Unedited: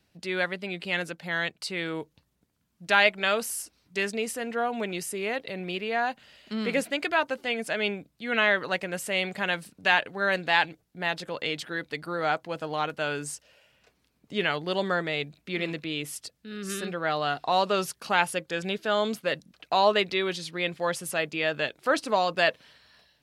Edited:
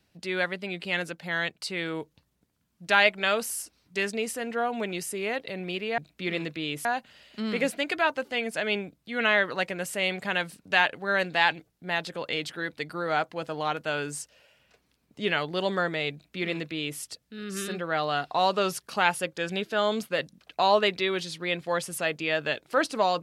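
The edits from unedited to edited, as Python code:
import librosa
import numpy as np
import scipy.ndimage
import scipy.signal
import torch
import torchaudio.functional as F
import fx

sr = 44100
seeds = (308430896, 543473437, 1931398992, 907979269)

y = fx.edit(x, sr, fx.duplicate(start_s=15.26, length_s=0.87, to_s=5.98), tone=tone)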